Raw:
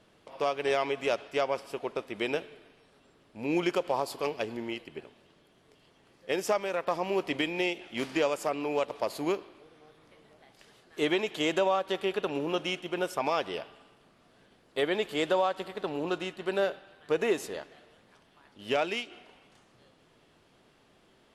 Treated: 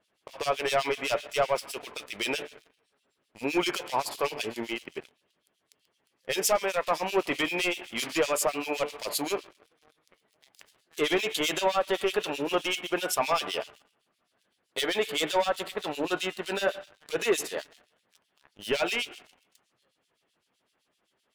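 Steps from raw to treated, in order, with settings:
spectral tilt +2.5 dB per octave
hum removal 147 Hz, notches 29
leveller curve on the samples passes 3
two-band tremolo in antiphase 7.8 Hz, depth 100%, crossover 2,400 Hz
level −1.5 dB

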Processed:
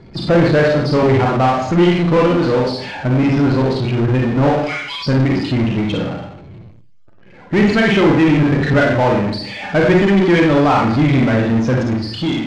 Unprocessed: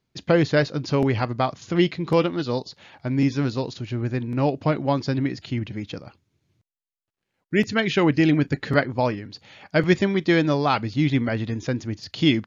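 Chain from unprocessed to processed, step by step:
fade-out on the ending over 0.78 s
0:04.49–0:05.06: inverse Chebyshev high-pass filter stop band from 420 Hz, stop band 70 dB
spectral peaks only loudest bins 32
four-comb reverb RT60 0.5 s, combs from 31 ms, DRR −1 dB
power curve on the samples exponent 0.5
high-frequency loss of the air 110 metres

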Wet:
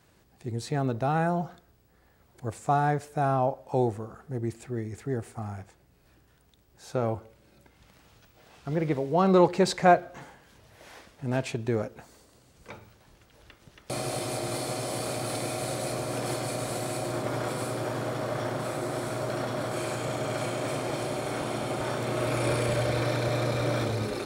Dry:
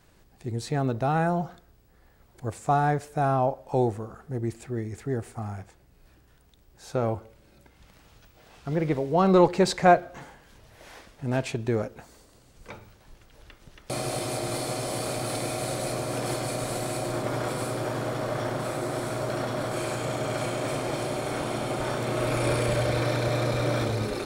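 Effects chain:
high-pass filter 61 Hz
level −1.5 dB

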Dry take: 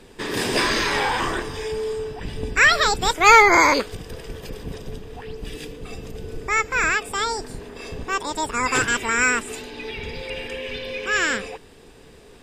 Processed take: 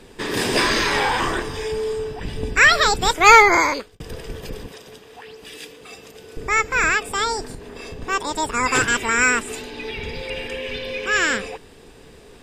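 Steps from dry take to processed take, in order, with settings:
0:03.35–0:04.00: fade out
0:04.66–0:06.37: high-pass filter 880 Hz 6 dB per octave
0:07.50–0:08.02: downward compressor, threshold −33 dBFS, peak gain reduction 6.5 dB
level +2 dB

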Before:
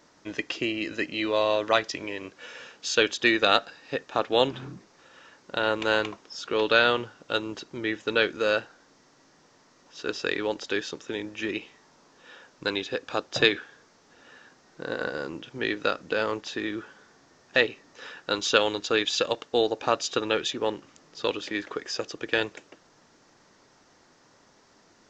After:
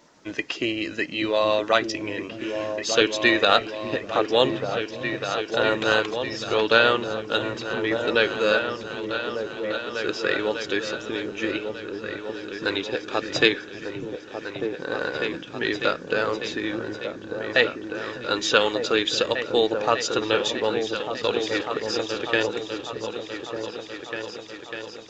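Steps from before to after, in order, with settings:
spectral magnitudes quantised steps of 15 dB
echo whose low-pass opens from repeat to repeat 598 ms, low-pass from 200 Hz, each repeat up 2 octaves, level −3 dB
level +3 dB

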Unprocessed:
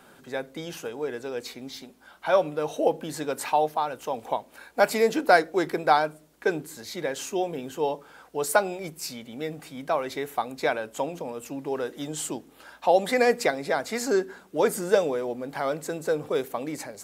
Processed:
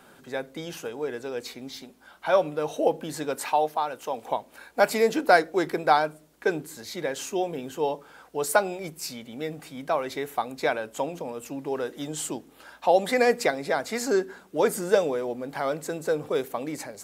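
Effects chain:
0:03.35–0:04.27: low-shelf EQ 150 Hz −9.5 dB

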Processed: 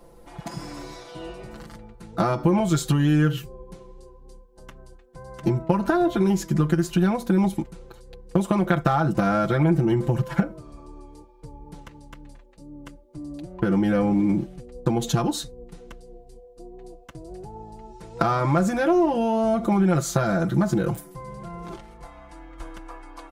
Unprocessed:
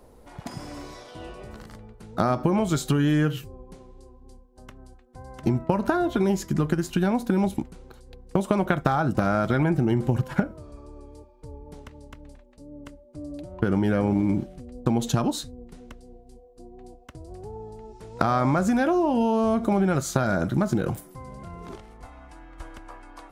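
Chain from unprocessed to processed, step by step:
comb filter 5.9 ms, depth 80%
in parallel at −9 dB: soft clipping −20 dBFS, distortion −10 dB
on the sum: level −2.5 dB

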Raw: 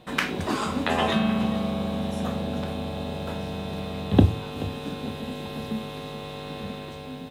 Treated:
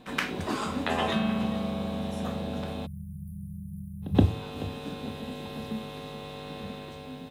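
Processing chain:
time-frequency box erased 0:02.86–0:04.15, 200–9,200 Hz
echo ahead of the sound 124 ms −21 dB
level −4 dB

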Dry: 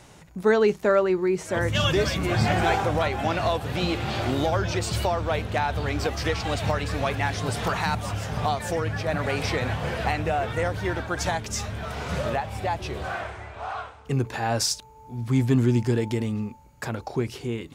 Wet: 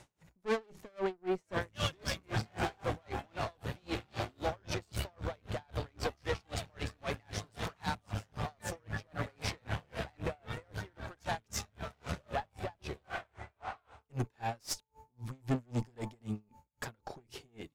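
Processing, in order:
tube saturation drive 24 dB, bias 0.8
tremolo with a sine in dB 3.8 Hz, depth 36 dB
level −1 dB

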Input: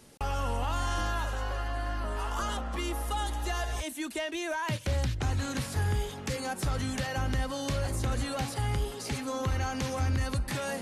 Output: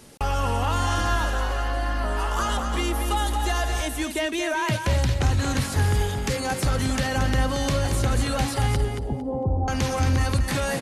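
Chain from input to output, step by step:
0:08.76–0:09.68: elliptic low-pass filter 820 Hz, stop band 60 dB
repeating echo 227 ms, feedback 21%, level −7 dB
level +7 dB

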